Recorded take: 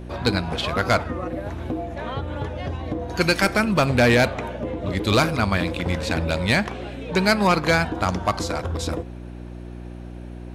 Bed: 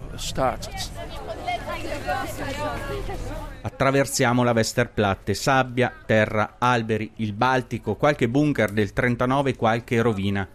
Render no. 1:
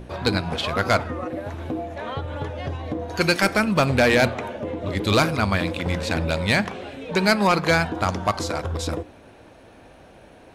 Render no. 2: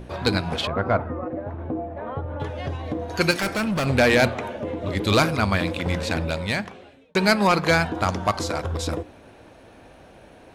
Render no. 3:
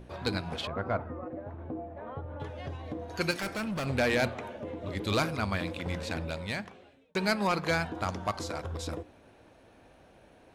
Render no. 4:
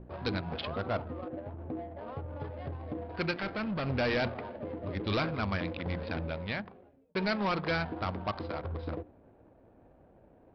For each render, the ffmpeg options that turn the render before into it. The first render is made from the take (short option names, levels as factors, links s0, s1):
-af "bandreject=f=60:t=h:w=4,bandreject=f=120:t=h:w=4,bandreject=f=180:t=h:w=4,bandreject=f=240:t=h:w=4,bandreject=f=300:t=h:w=4,bandreject=f=360:t=h:w=4"
-filter_complex "[0:a]asettb=1/sr,asplit=3[s0][s1][s2];[s0]atrim=end=0.674[s3];[s1]atrim=start=0.67:end=2.4,asetpts=PTS-STARTPTS,afade=t=in:d=0.004:c=qsin,afade=t=out:st=1.726:d=0.004:c=qsin,lowpass=1200[s4];[s2]atrim=start=2.396[s5];[s3][s4]acrossfade=d=0.004:c1=hsin:c2=qsin[s6];[s6][s5]acrossfade=d=0.004:c1=qsin:c2=hsin,asettb=1/sr,asplit=3[s7][s8][s9];[s7]atrim=end=3.314[s10];[s8]atrim=start=3.31:end=3.86,asetpts=PTS-STARTPTS,afade=t=in:d=0.004:c=qsin,afade=t=out:st=0.546:d=0.004:c=qsin,asoftclip=type=hard:threshold=0.0891[s11];[s9]atrim=start=3.856[s12];[s10][s11]acrossfade=d=0.004:c1=hsin:c2=qsin[s13];[s13][s12]acrossfade=d=0.004:c1=qsin:c2=hsin,asplit=2[s14][s15];[s14]atrim=end=7.15,asetpts=PTS-STARTPTS,afade=t=out:st=6.02:d=1.13[s16];[s15]atrim=start=7.15,asetpts=PTS-STARTPTS,afade=t=in:d=0.004:c=hsin[s17];[s16][s17]concat=n=2:v=0:a=1"
-af "volume=0.335"
-af "adynamicsmooth=sensitivity=8:basefreq=730,aresample=11025,asoftclip=type=hard:threshold=0.0501,aresample=44100"